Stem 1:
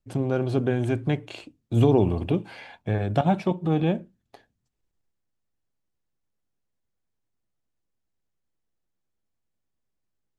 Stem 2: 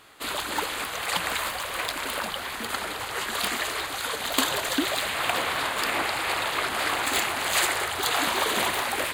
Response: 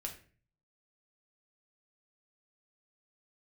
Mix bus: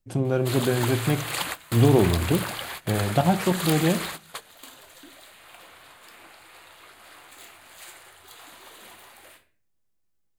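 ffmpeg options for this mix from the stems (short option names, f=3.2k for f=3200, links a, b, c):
-filter_complex "[0:a]volume=-2dB,asplit=3[a][b][c];[b]volume=-4.5dB[d];[1:a]adelay=250,volume=-4dB,asplit=2[e][f];[f]volume=-19dB[g];[c]apad=whole_len=413884[h];[e][h]sidechaingate=range=-33dB:threshold=-50dB:ratio=16:detection=peak[i];[2:a]atrim=start_sample=2205[j];[d][g]amix=inputs=2:normalize=0[k];[k][j]afir=irnorm=-1:irlink=0[l];[a][i][l]amix=inputs=3:normalize=0,highshelf=f=7k:g=7"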